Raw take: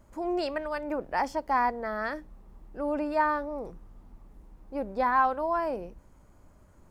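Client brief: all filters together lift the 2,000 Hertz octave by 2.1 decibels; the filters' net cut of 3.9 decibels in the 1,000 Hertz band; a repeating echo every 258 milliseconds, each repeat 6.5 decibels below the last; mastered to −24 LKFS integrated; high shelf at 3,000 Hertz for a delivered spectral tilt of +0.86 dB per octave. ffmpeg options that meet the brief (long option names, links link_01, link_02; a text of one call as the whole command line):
ffmpeg -i in.wav -af "equalizer=frequency=1000:width_type=o:gain=-5.5,equalizer=frequency=2000:width_type=o:gain=6.5,highshelf=frequency=3000:gain=-5.5,aecho=1:1:258|516|774|1032|1290|1548:0.473|0.222|0.105|0.0491|0.0231|0.0109,volume=7dB" out.wav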